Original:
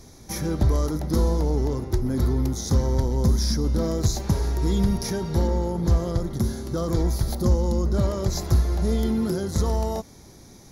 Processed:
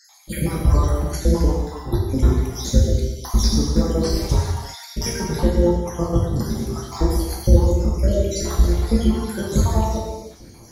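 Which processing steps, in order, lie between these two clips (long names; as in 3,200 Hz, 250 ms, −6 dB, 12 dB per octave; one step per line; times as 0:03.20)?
time-frequency cells dropped at random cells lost 68%
reverb whose tail is shaped and stops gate 400 ms falling, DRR −3 dB
level +4.5 dB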